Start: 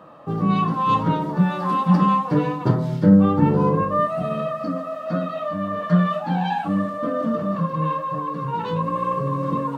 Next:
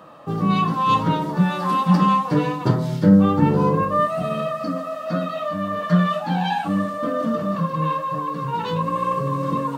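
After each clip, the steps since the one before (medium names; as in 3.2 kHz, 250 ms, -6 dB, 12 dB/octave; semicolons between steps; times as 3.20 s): treble shelf 2.8 kHz +9.5 dB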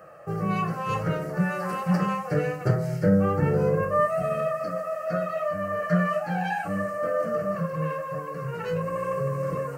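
static phaser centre 970 Hz, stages 6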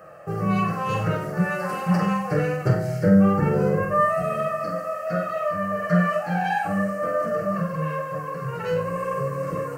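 flutter echo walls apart 7.9 m, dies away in 0.44 s; trim +2 dB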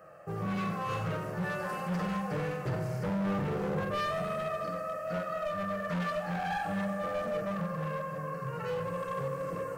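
hard clipper -22 dBFS, distortion -7 dB; on a send at -9 dB: reverberation RT60 3.6 s, pre-delay 83 ms; on the sum: trim -8 dB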